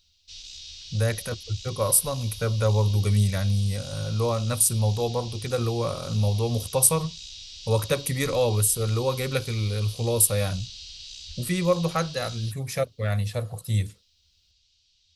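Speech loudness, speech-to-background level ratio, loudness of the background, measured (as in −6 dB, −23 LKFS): −25.0 LKFS, 14.0 dB, −39.0 LKFS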